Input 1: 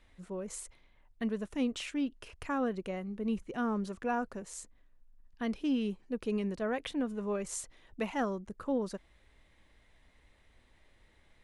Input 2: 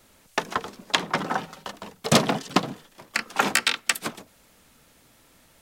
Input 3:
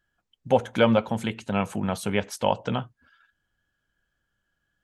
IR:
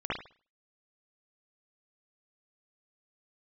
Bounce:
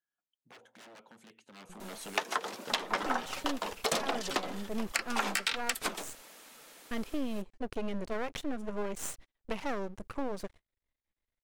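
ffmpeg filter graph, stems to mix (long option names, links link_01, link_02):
-filter_complex "[0:a]agate=range=-28dB:threshold=-51dB:ratio=16:detection=peak,acontrast=74,aeval=exprs='max(val(0),0)':channel_layout=same,adelay=1500,volume=-2dB[link_01];[1:a]acontrast=69,flanger=delay=2.4:depth=8.3:regen=-43:speed=1.3:shape=triangular,highpass=370,adelay=1800,volume=2dB[link_02];[2:a]aeval=exprs='0.0668*(abs(mod(val(0)/0.0668+3,4)-2)-1)':channel_layout=same,acompressor=threshold=-36dB:ratio=2.5,highpass=270,volume=-6dB,afade=type=in:start_time=1.5:duration=0.57:silence=0.237137,asplit=2[link_03][link_04];[link_04]apad=whole_len=570545[link_05];[link_01][link_05]sidechaincompress=threshold=-58dB:ratio=8:attack=5.3:release=144[link_06];[link_02][link_03]amix=inputs=2:normalize=0,dynaudnorm=framelen=110:gausssize=21:maxgain=5dB,alimiter=limit=-8.5dB:level=0:latency=1:release=411,volume=0dB[link_07];[link_06][link_07]amix=inputs=2:normalize=0,acompressor=threshold=-28dB:ratio=6"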